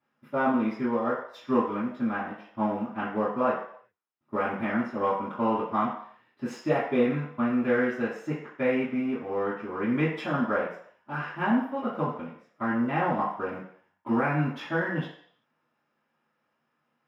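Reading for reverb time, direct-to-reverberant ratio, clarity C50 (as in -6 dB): 0.65 s, -13.0 dB, 4.0 dB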